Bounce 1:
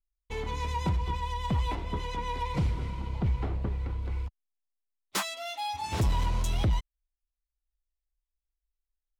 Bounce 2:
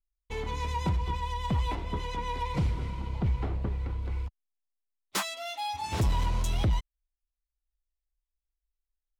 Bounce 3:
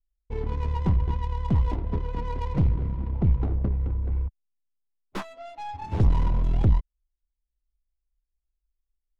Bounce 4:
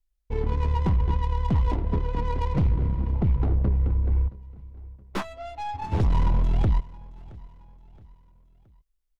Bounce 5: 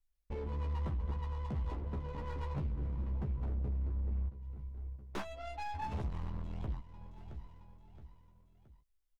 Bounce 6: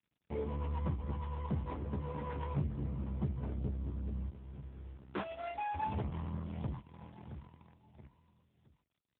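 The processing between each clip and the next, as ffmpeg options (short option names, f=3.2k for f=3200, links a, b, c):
-af anull
-af "aeval=exprs='0.112*(cos(1*acos(clip(val(0)/0.112,-1,1)))-cos(1*PI/2))+0.0316*(cos(2*acos(clip(val(0)/0.112,-1,1)))-cos(2*PI/2))':c=same,tiltshelf=f=640:g=6.5,adynamicsmooth=sensitivity=7.5:basefreq=730"
-filter_complex "[0:a]acrossover=split=800[a][b];[a]alimiter=limit=-18.5dB:level=0:latency=1:release=19[c];[c][b]amix=inputs=2:normalize=0,aecho=1:1:671|1342|2013:0.0794|0.035|0.0154,volume=3.5dB"
-filter_complex "[0:a]acompressor=threshold=-31dB:ratio=3,asoftclip=type=hard:threshold=-30.5dB,asplit=2[a][b];[b]adelay=14,volume=-4dB[c];[a][c]amix=inputs=2:normalize=0,volume=-5dB"
-filter_complex "[0:a]asplit=2[a][b];[b]aeval=exprs='val(0)*gte(abs(val(0)),0.00473)':c=same,volume=-3.5dB[c];[a][c]amix=inputs=2:normalize=0" -ar 8000 -c:a libopencore_amrnb -b:a 7950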